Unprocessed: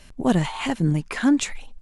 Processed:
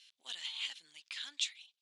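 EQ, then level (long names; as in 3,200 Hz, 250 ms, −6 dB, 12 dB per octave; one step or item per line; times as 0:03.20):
four-pole ladder band-pass 4,000 Hz, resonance 55%
+3.5 dB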